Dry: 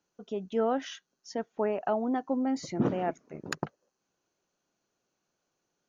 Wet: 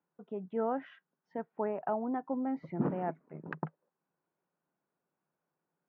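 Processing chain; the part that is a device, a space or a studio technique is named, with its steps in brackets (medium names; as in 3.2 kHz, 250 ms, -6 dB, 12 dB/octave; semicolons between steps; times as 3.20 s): bass cabinet (cabinet simulation 86–2100 Hz, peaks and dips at 110 Hz -8 dB, 160 Hz +9 dB, 930 Hz +5 dB); trim -5.5 dB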